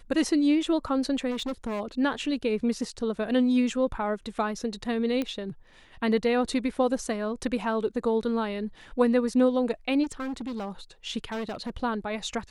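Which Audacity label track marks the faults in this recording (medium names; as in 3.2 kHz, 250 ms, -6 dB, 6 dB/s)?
1.300000	1.810000	clipped -27.5 dBFS
5.220000	5.220000	pop -17 dBFS
10.030000	10.700000	clipped -29.5 dBFS
11.320000	11.700000	clipped -29 dBFS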